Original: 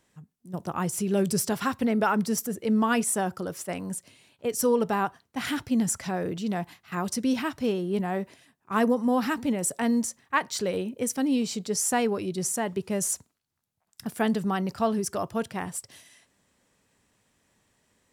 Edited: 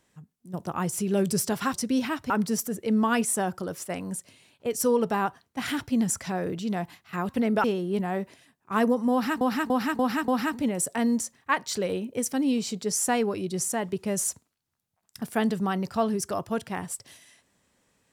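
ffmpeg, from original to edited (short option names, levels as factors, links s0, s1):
-filter_complex "[0:a]asplit=9[s0][s1][s2][s3][s4][s5][s6][s7][s8];[s0]atrim=end=1.742[s9];[s1]atrim=start=7.078:end=7.642[s10];[s2]atrim=start=2.088:end=7.082[s11];[s3]atrim=start=1.738:end=2.092[s12];[s4]atrim=start=7.638:end=9.412[s13];[s5]atrim=start=9.118:end=9.412[s14];[s6]atrim=start=9.118:end=9.412[s15];[s7]atrim=start=9.118:end=9.412[s16];[s8]atrim=start=9.118[s17];[s9][s10]acrossfade=d=0.004:c1=hsin:c2=hsin[s18];[s18][s11]acrossfade=d=0.004:c1=hsin:c2=hsin[s19];[s19][s12]acrossfade=d=0.004:c1=hsin:c2=hsin[s20];[s20][s13]acrossfade=d=0.004:c1=hsin:c2=hsin[s21];[s21][s14]acrossfade=d=0.004:c1=hsin:c2=hsin[s22];[s22][s15]acrossfade=d=0.004:c1=hsin:c2=hsin[s23];[s23][s16]acrossfade=d=0.004:c1=hsin:c2=hsin[s24];[s24][s17]acrossfade=d=0.004:c1=hsin:c2=hsin"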